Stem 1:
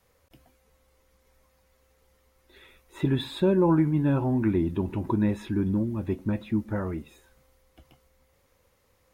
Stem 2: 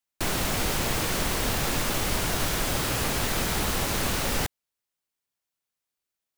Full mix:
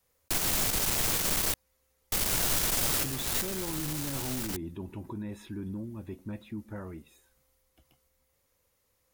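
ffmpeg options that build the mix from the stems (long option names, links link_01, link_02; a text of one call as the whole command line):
ffmpeg -i stem1.wav -i stem2.wav -filter_complex "[0:a]alimiter=limit=-20.5dB:level=0:latency=1:release=13,volume=-10.5dB,asplit=2[link_01][link_02];[1:a]aeval=exprs='(tanh(20*val(0)+0.6)-tanh(0.6))/20':channel_layout=same,adelay=100,volume=-2dB,asplit=3[link_03][link_04][link_05];[link_03]atrim=end=1.54,asetpts=PTS-STARTPTS,afade=type=out:start_time=1.536:duration=0.004:curve=hsin[link_06];[link_04]atrim=start=1.54:end=2.12,asetpts=PTS-STARTPTS,volume=0[link_07];[link_05]atrim=start=2.12,asetpts=PTS-STARTPTS,afade=type=in:duration=0.004:curve=hsin[link_08];[link_06][link_07][link_08]concat=n=3:v=0:a=1[link_09];[link_02]apad=whole_len=285602[link_10];[link_09][link_10]sidechaincompress=threshold=-42dB:ratio=8:attack=7.9:release=299[link_11];[link_01][link_11]amix=inputs=2:normalize=0,highshelf=frequency=4500:gain=11" out.wav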